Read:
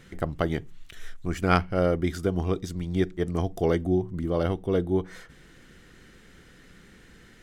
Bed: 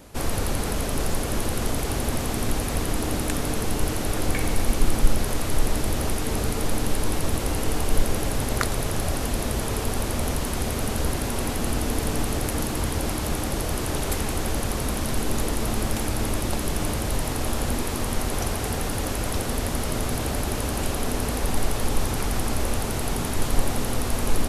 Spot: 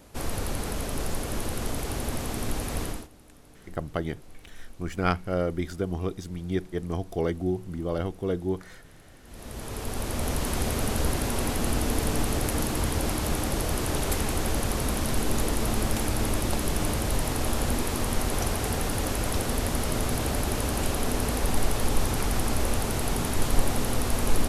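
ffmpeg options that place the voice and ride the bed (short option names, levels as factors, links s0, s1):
-filter_complex "[0:a]adelay=3550,volume=0.668[s0];[1:a]volume=11.9,afade=t=out:st=2.84:d=0.24:silence=0.0749894,afade=t=in:st=9.24:d=1.28:silence=0.0473151[s1];[s0][s1]amix=inputs=2:normalize=0"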